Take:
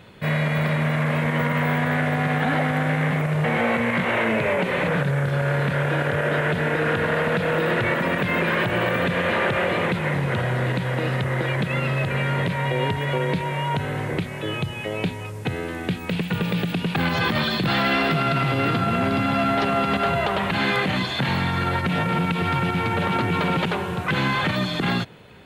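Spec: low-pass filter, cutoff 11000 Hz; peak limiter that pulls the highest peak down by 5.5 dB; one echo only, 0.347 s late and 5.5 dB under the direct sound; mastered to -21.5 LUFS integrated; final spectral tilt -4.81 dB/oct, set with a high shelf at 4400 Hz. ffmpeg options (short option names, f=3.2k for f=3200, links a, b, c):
-af "lowpass=11k,highshelf=f=4.4k:g=-3.5,alimiter=limit=-15.5dB:level=0:latency=1,aecho=1:1:347:0.531,volume=2dB"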